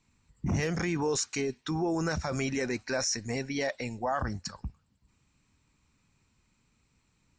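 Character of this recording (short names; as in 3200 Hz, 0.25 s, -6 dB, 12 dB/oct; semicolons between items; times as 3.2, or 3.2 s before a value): noise floor -72 dBFS; spectral tilt -4.5 dB/oct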